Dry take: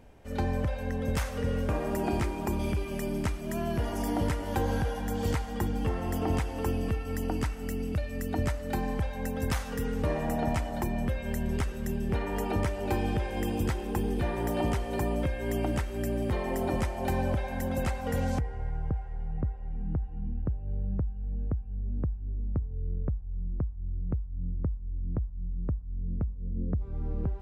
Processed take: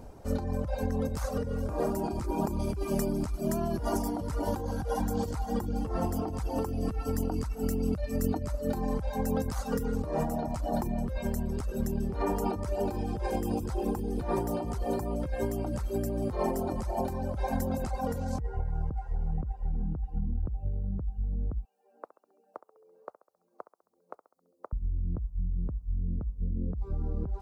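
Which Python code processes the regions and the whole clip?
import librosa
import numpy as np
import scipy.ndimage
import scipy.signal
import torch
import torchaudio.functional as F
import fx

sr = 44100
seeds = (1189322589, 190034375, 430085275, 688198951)

y = fx.chain(x, sr, fx.highpass(hz=630.0, slope=24),
    fx.echo_feedback(ms=67, feedback_pct=54, wet_db=-10.0), at=(21.65, 24.73))
y = fx.band_shelf(y, sr, hz=2400.0, db=-10.5, octaves=1.3)
y = fx.dereverb_blind(y, sr, rt60_s=0.59)
y = fx.over_compress(y, sr, threshold_db=-35.0, ratio=-1.0)
y = F.gain(torch.from_numpy(y), 4.5).numpy()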